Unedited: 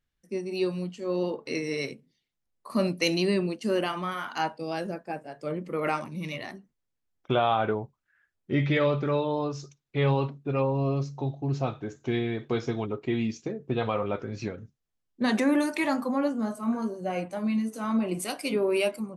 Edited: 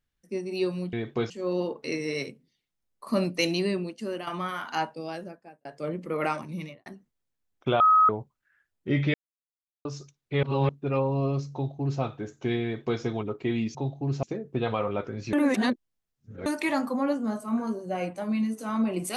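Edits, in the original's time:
3.01–3.90 s: fade out, to -9.5 dB
4.44–5.28 s: fade out linear
6.17–6.49 s: studio fade out
7.43–7.72 s: bleep 1.27 kHz -15 dBFS
8.77–9.48 s: mute
10.06–10.32 s: reverse
11.16–11.64 s: copy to 13.38 s
12.27–12.64 s: copy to 0.93 s
14.48–15.61 s: reverse

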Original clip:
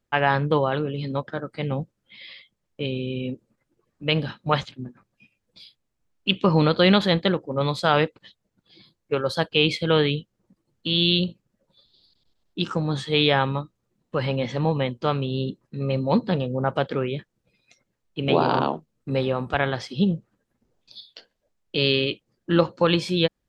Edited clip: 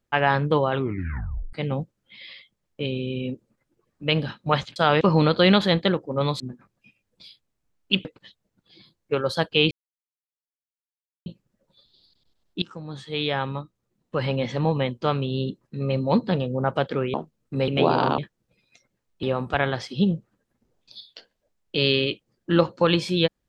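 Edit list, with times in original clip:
0.72 s: tape stop 0.81 s
4.76–6.41 s: swap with 7.80–8.05 s
9.71–11.26 s: mute
12.62–14.31 s: fade in, from -16.5 dB
17.14–18.19 s: swap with 18.69–19.23 s

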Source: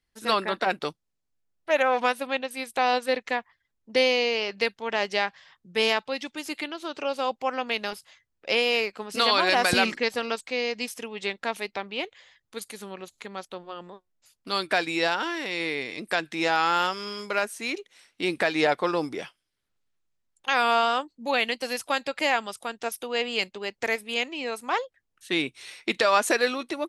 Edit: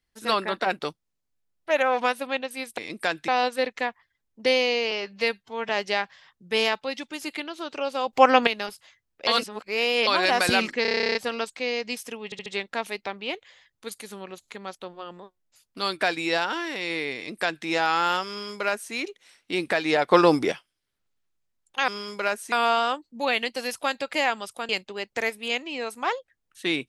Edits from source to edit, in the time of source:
4.41–4.93 s: stretch 1.5×
7.37–7.71 s: gain +12 dB
8.51–9.31 s: reverse
10.06 s: stutter 0.03 s, 12 plays
11.16 s: stutter 0.07 s, 4 plays
15.86–16.36 s: copy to 2.78 s
16.99–17.63 s: copy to 20.58 s
18.81–19.22 s: gain +9 dB
22.75–23.35 s: delete

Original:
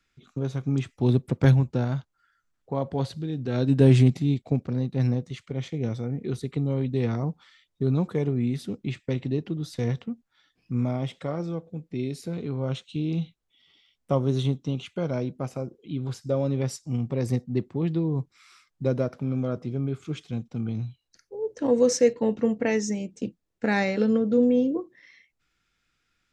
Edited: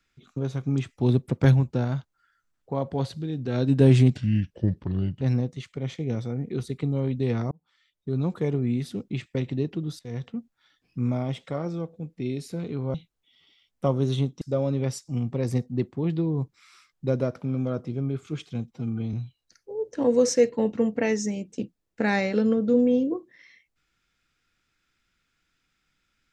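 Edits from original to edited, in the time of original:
4.16–4.95 s: speed 75%
7.25–8.18 s: fade in
9.73–10.12 s: fade in, from -19 dB
12.68–13.21 s: delete
14.68–16.19 s: delete
20.49–20.77 s: stretch 1.5×

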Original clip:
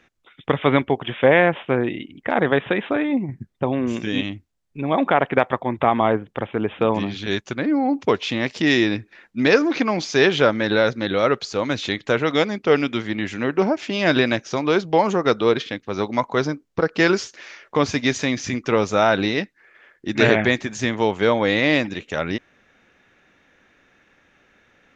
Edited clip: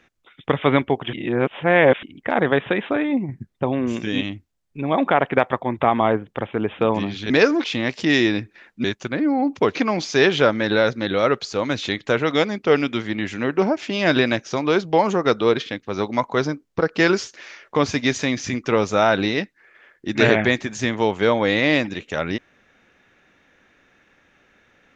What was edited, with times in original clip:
1.13–2.03 s: reverse
7.30–8.21 s: swap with 9.41–9.75 s

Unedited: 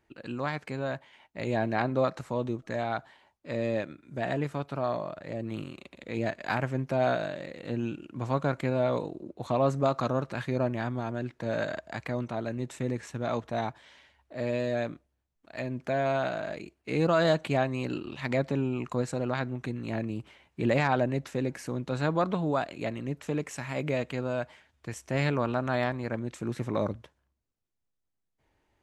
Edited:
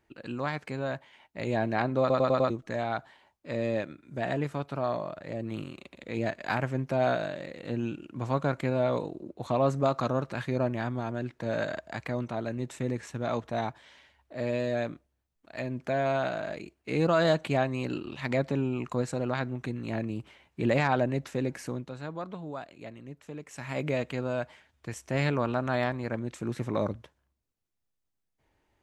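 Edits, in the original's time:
2.00 s: stutter in place 0.10 s, 5 plays
21.68–23.72 s: dip -10.5 dB, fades 0.26 s

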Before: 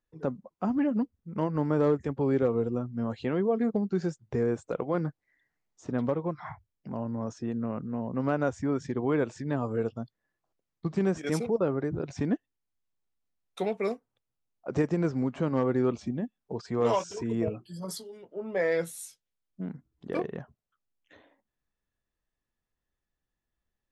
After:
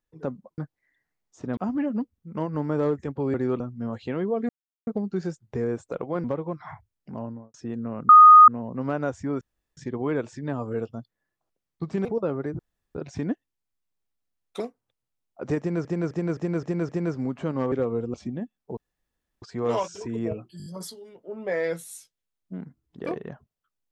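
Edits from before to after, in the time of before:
2.35–2.77 s: swap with 15.69–15.95 s
3.66 s: insert silence 0.38 s
5.03–6.02 s: move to 0.58 s
6.98–7.32 s: studio fade out
7.87 s: add tone 1.24 kHz -6.5 dBFS 0.39 s
8.80 s: insert room tone 0.36 s
11.08–11.43 s: delete
11.97 s: insert room tone 0.36 s
13.62–13.87 s: delete
14.86–15.12 s: loop, 6 plays
16.58 s: insert room tone 0.65 s
17.74 s: stutter 0.02 s, 5 plays

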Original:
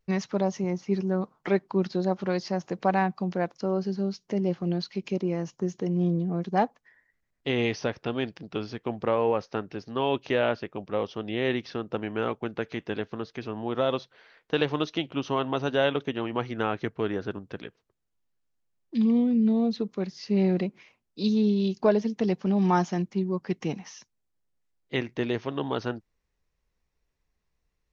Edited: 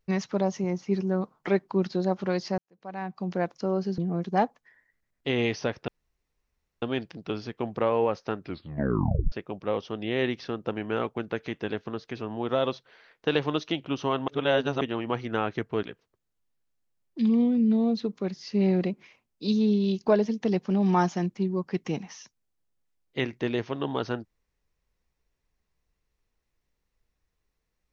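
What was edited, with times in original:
2.58–3.35 s: fade in quadratic
3.98–6.18 s: delete
8.08 s: insert room tone 0.94 s
9.65 s: tape stop 0.93 s
15.54–16.07 s: reverse
17.09–17.59 s: delete

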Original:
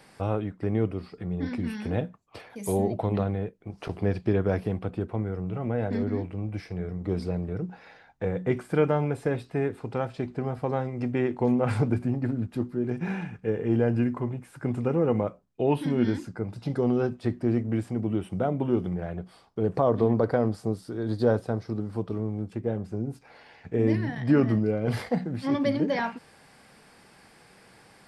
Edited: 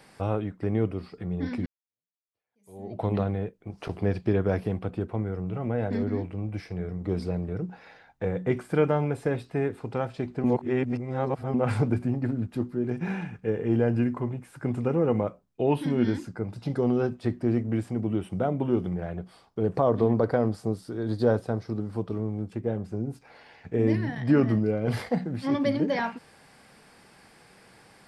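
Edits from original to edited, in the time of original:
1.66–3.03 s: fade in exponential
10.44–11.54 s: reverse

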